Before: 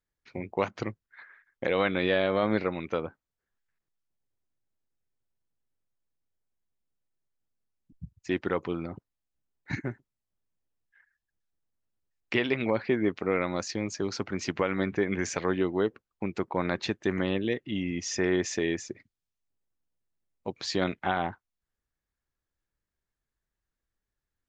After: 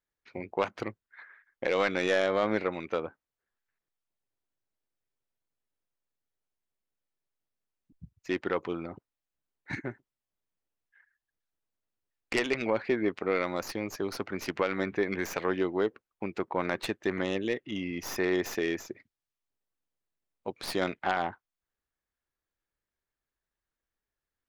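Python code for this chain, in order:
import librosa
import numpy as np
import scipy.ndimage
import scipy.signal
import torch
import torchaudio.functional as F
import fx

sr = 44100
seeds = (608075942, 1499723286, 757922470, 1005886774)

y = fx.tracing_dist(x, sr, depth_ms=0.14)
y = fx.bass_treble(y, sr, bass_db=-7, treble_db=-5)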